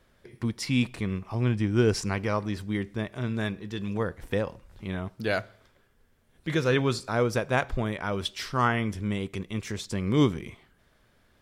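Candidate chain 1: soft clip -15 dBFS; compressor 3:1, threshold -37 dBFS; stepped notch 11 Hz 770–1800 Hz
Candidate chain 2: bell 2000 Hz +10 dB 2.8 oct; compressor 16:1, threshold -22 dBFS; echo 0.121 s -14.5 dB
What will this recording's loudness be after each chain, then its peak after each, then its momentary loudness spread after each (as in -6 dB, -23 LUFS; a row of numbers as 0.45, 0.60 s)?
-40.0, -29.0 LUFS; -24.5, -10.5 dBFS; 5, 6 LU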